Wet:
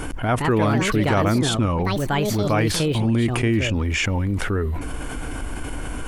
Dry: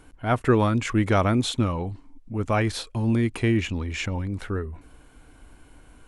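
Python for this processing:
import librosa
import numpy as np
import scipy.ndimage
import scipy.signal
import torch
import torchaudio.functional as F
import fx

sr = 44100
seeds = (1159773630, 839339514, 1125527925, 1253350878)

p1 = fx.notch(x, sr, hz=4000.0, q=6.6)
p2 = fx.level_steps(p1, sr, step_db=23)
p3 = p1 + (p2 * 10.0 ** (-3.0 / 20.0))
p4 = fx.echo_pitch(p3, sr, ms=230, semitones=5, count=2, db_per_echo=-6.0)
p5 = fx.env_flatten(p4, sr, amount_pct=70)
y = p5 * 10.0 ** (-4.5 / 20.0)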